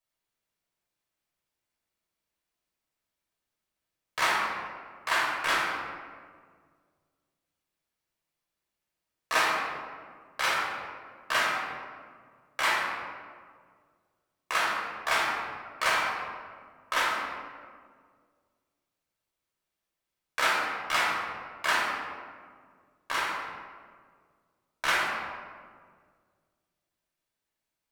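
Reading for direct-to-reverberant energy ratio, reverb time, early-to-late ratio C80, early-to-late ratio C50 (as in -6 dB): -4.5 dB, 1.8 s, 2.0 dB, 0.0 dB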